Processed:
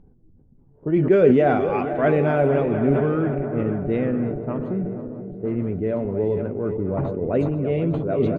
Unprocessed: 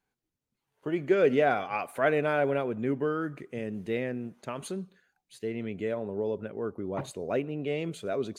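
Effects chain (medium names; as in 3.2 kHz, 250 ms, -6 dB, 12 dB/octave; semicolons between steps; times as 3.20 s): backward echo that repeats 242 ms, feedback 81%, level -10.5 dB; level-controlled noise filter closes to 420 Hz, open at -21.5 dBFS; tilt EQ -3.5 dB/octave; upward compressor, threshold -42 dBFS; doubling 12 ms -12 dB; decay stretcher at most 43 dB/s; trim +2.5 dB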